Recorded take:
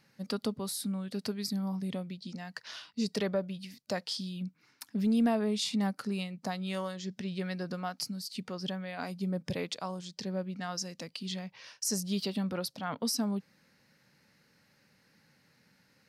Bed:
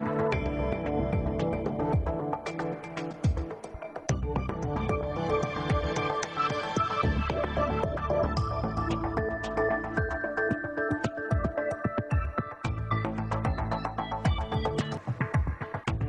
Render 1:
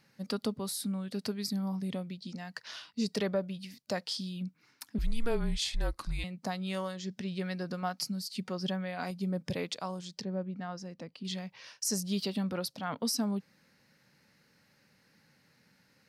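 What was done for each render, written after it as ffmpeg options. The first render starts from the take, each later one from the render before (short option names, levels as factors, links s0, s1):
-filter_complex "[0:a]asettb=1/sr,asplit=3[s0][s1][s2];[s0]atrim=end=4.984[s3];[s1]atrim=start=4.98:end=6.24,asetpts=PTS-STARTPTS,afade=t=in:d=0.004:c=qsin,afade=t=out:st=1.256:d=0.004:c=qsin,afreqshift=-240[s4];[s2]atrim=start=6.236[s5];[s3][s4]acrossfade=d=0.004:c1=hsin:c2=qsin[s6];[s6][s5]acrossfade=d=0.004:c1=qsin:c2=hsin,asettb=1/sr,asplit=3[s7][s8][s9];[s7]atrim=end=7.824[s10];[s8]atrim=start=7.82:end=9.11,asetpts=PTS-STARTPTS,afade=t=in:d=0.004:c=qsin,afade=t=out:st=1.286:d=0.004:c=qsin,aecho=1:1:5.4:0.44,atrim=end_sample=56889[s11];[s9]atrim=start=9.106[s12];[s10][s11]acrossfade=d=0.004:c1=hsin:c2=qsin[s13];[s13][s12]acrossfade=d=0.004:c1=qsin:c2=hsin,asettb=1/sr,asplit=3[s14][s15][s16];[s14]atrim=end=10.214[s17];[s15]atrim=start=10.21:end=11.25,asetpts=PTS-STARTPTS,afade=t=in:d=0.004:c=qsin,afade=t=out:st=1.036:d=0.004:c=qsin,lowpass=f=1100:p=1[s18];[s16]atrim=start=11.246[s19];[s17][s18]acrossfade=d=0.004:c1=hsin:c2=qsin[s20];[s20][s19]acrossfade=d=0.004:c1=qsin:c2=hsin"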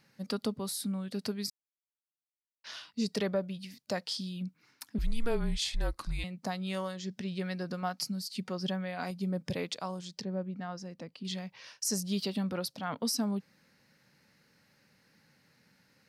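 -filter_complex "[0:a]asplit=3[s0][s1][s2];[s0]atrim=end=1.5,asetpts=PTS-STARTPTS,afade=t=out:st=1.496:d=0.004:c=hsin[s3];[s1]atrim=start=1.5:end=2.64,asetpts=PTS-STARTPTS,volume=0[s4];[s2]atrim=start=2.64,asetpts=PTS-STARTPTS,afade=t=in:d=0.004:c=hsin[s5];[s3][s4][s5]concat=n=3:v=0:a=1"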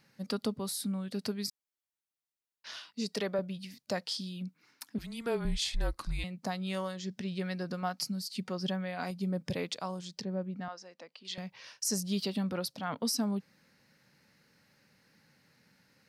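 -filter_complex "[0:a]asettb=1/sr,asplit=3[s0][s1][s2];[s0]atrim=end=2.794[s3];[s1]atrim=start=2.79:end=3.39,asetpts=PTS-STARTPTS,afade=t=in:d=0.004:c=qsin,afade=t=out:st=0.596:d=0.004:c=qsin,highpass=f=290:p=1[s4];[s2]atrim=start=3.386[s5];[s3][s4]acrossfade=d=0.004:c1=hsin:c2=qsin[s6];[s6][s5]acrossfade=d=0.004:c1=qsin:c2=hsin,asettb=1/sr,asplit=3[s7][s8][s9];[s7]atrim=end=4.084[s10];[s8]atrim=start=4.08:end=5.45,asetpts=PTS-STARTPTS,afade=t=in:d=0.004:c=qsin,afade=t=out:st=1.366:d=0.004:c=qsin,highpass=160[s11];[s9]atrim=start=5.446[s12];[s10][s11]acrossfade=d=0.004:c1=hsin:c2=qsin[s13];[s13][s12]acrossfade=d=0.004:c1=qsin:c2=hsin,asettb=1/sr,asplit=3[s14][s15][s16];[s14]atrim=end=10.684[s17];[s15]atrim=start=10.68:end=11.38,asetpts=PTS-STARTPTS,afade=t=in:d=0.004:c=qsin,afade=t=out:st=0.696:d=0.004:c=qsin,highpass=570,lowpass=6900[s18];[s16]atrim=start=11.376[s19];[s17][s18]acrossfade=d=0.004:c1=hsin:c2=qsin[s20];[s20][s19]acrossfade=d=0.004:c1=qsin:c2=hsin"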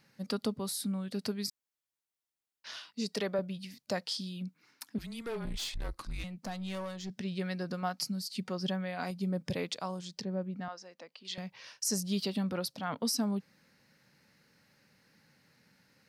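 -filter_complex "[0:a]asettb=1/sr,asplit=3[s0][s1][s2];[s0]atrim=end=5.134[s3];[s1]atrim=start=5.13:end=7.1,asetpts=PTS-STARTPTS,afade=t=in:d=0.004:c=qsin,afade=t=out:st=1.966:d=0.004:c=qsin,aeval=exprs='(tanh(44.7*val(0)+0.25)-tanh(0.25))/44.7':c=same[s4];[s2]atrim=start=7.096[s5];[s3][s4]acrossfade=d=0.004:c1=hsin:c2=qsin[s6];[s6][s5]acrossfade=d=0.004:c1=qsin:c2=hsin"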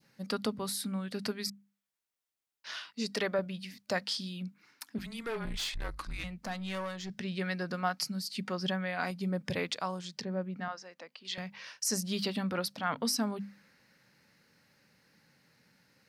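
-af "adynamicequalizer=threshold=0.002:dfrequency=1700:dqfactor=0.82:tfrequency=1700:tqfactor=0.82:attack=5:release=100:ratio=0.375:range=3.5:mode=boostabove:tftype=bell,bandreject=f=50:t=h:w=6,bandreject=f=100:t=h:w=6,bandreject=f=150:t=h:w=6,bandreject=f=200:t=h:w=6,bandreject=f=250:t=h:w=6"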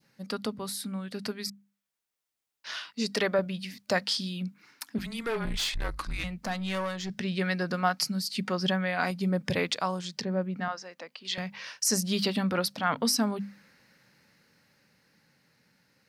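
-af "dynaudnorm=f=280:g=17:m=1.88"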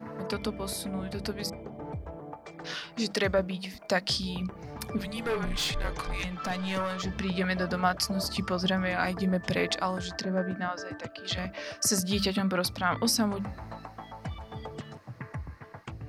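-filter_complex "[1:a]volume=0.282[s0];[0:a][s0]amix=inputs=2:normalize=0"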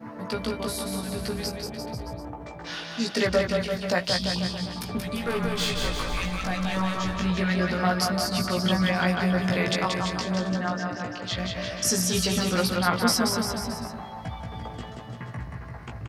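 -filter_complex "[0:a]asplit=2[s0][s1];[s1]adelay=17,volume=0.708[s2];[s0][s2]amix=inputs=2:normalize=0,asplit=2[s3][s4];[s4]aecho=0:1:180|342|487.8|619|737.1:0.631|0.398|0.251|0.158|0.1[s5];[s3][s5]amix=inputs=2:normalize=0"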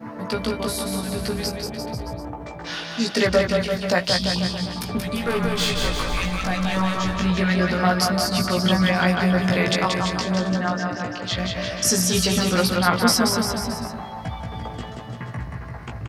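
-af "volume=1.68"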